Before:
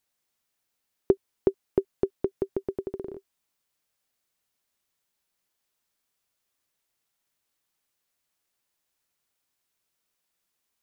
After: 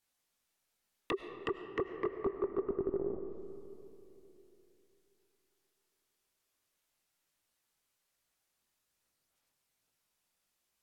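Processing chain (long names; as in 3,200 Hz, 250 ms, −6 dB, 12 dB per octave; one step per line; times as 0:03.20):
dynamic equaliser 950 Hz, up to +4 dB, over −43 dBFS, Q 1.1
multi-voice chorus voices 4, 1.2 Hz, delay 20 ms, depth 3 ms
wave folding −27 dBFS
treble cut that deepens with the level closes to 880 Hz, closed at −38 dBFS
on a send: convolution reverb RT60 3.0 s, pre-delay 60 ms, DRR 7.5 dB
on the sum: level +2 dB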